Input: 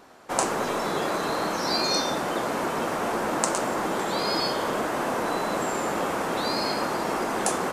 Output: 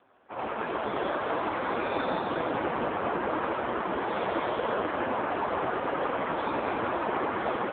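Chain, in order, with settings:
high-frequency loss of the air 190 metres
feedback echo with a high-pass in the loop 86 ms, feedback 72%, high-pass 950 Hz, level −5 dB
automatic gain control gain up to 9 dB
parametric band 130 Hz −15 dB 0.55 octaves, from 0:01.96 −2 dB, from 0:03.31 −14.5 dB
level −7 dB
AMR narrowband 5.15 kbit/s 8,000 Hz

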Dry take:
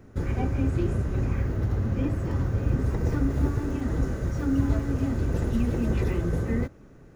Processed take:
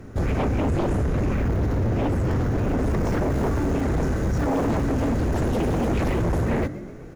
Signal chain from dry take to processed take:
echo with shifted repeats 127 ms, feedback 53%, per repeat +63 Hz, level −19.5 dB
sine wavefolder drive 14 dB, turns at −10.5 dBFS
level −8.5 dB

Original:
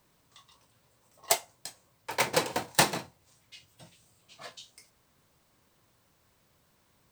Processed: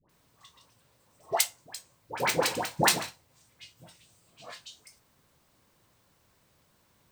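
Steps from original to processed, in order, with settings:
all-pass dispersion highs, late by 94 ms, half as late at 990 Hz
level +1 dB

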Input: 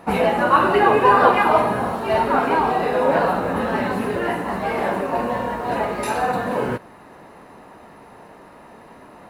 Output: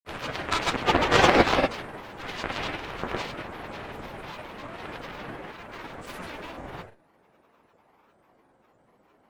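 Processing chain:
harmonic generator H 3 −9 dB, 4 −18 dB, 6 −12 dB, 8 −17 dB, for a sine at −1 dBFS
reverb whose tail is shaped and stops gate 110 ms rising, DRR −2 dB
granular cloud, pitch spread up and down by 7 semitones
level +2 dB

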